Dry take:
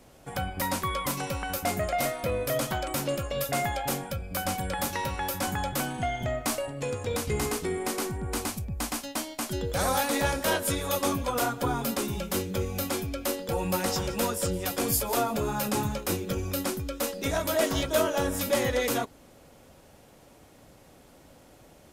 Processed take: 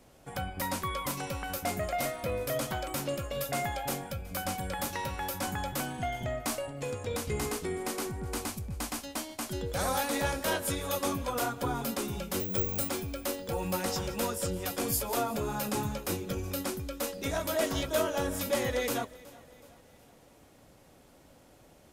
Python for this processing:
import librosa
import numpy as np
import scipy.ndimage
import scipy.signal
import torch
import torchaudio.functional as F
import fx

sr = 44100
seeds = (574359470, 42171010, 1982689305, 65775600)

p1 = fx.resample_bad(x, sr, factor=2, down='none', up='zero_stuff', at=(12.4, 12.89))
p2 = p1 + fx.echo_feedback(p1, sr, ms=371, feedback_pct=50, wet_db=-21.5, dry=0)
y = F.gain(torch.from_numpy(p2), -4.0).numpy()